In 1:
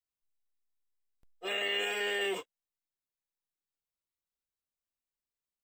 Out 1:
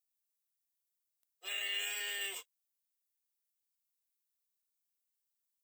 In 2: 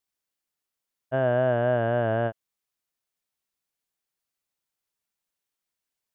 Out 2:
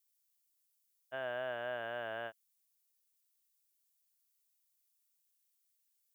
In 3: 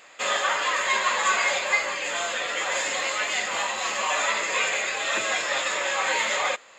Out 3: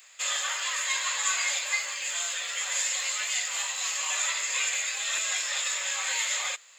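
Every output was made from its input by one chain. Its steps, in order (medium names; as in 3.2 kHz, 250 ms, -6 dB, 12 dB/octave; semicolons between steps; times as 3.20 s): differentiator; trim +4.5 dB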